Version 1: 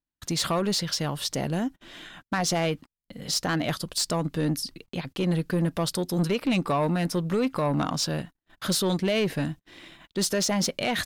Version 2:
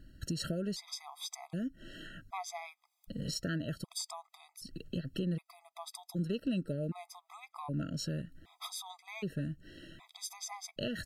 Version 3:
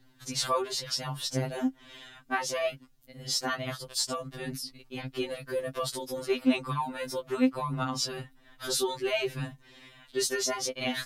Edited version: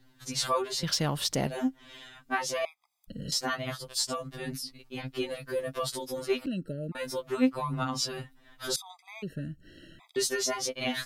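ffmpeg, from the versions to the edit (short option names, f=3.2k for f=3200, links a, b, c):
-filter_complex "[1:a]asplit=3[a][b][c];[2:a]asplit=5[d][e][f][g][h];[d]atrim=end=0.832[i];[0:a]atrim=start=0.828:end=1.472[j];[e]atrim=start=1.468:end=2.652[k];[a]atrim=start=2.648:end=3.322[l];[f]atrim=start=3.318:end=6.462[m];[b]atrim=start=6.458:end=6.952[n];[g]atrim=start=6.948:end=8.762[o];[c]atrim=start=8.758:end=10.162[p];[h]atrim=start=10.158[q];[i][j]acrossfade=d=0.004:c1=hsin:c2=hsin[r];[r][k]acrossfade=d=0.004:c1=hsin:c2=hsin[s];[s][l]acrossfade=d=0.004:c1=hsin:c2=hsin[t];[t][m]acrossfade=d=0.004:c1=hsin:c2=hsin[u];[u][n]acrossfade=d=0.004:c1=hsin:c2=hsin[v];[v][o]acrossfade=d=0.004:c1=hsin:c2=hsin[w];[w][p]acrossfade=d=0.004:c1=hsin:c2=hsin[x];[x][q]acrossfade=d=0.004:c1=hsin:c2=hsin"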